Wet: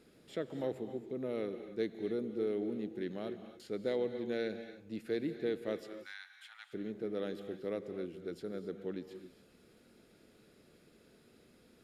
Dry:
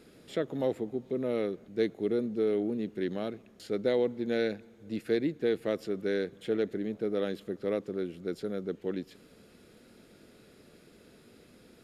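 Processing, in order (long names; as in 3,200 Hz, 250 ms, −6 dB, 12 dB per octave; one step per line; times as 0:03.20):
0:05.84–0:06.73: Butterworth high-pass 830 Hz 72 dB per octave
reverb whose tail is shaped and stops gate 300 ms rising, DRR 9 dB
level −7 dB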